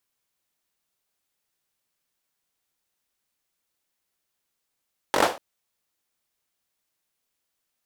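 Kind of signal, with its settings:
synth clap length 0.24 s, bursts 5, apart 21 ms, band 610 Hz, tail 0.31 s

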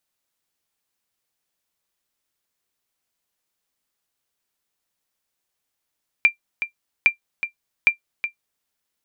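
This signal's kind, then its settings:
ping with an echo 2,370 Hz, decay 0.11 s, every 0.81 s, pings 3, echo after 0.37 s, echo −10.5 dB −5 dBFS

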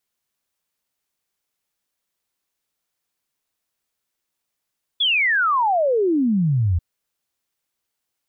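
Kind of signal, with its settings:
exponential sine sweep 3,500 Hz → 80 Hz 1.79 s −15.5 dBFS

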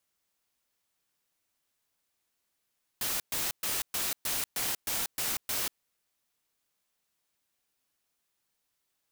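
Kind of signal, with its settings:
noise bursts white, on 0.19 s, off 0.12 s, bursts 9, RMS −31.5 dBFS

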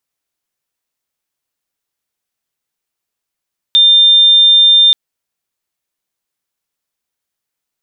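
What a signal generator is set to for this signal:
tone sine 3,600 Hz −4 dBFS 1.18 s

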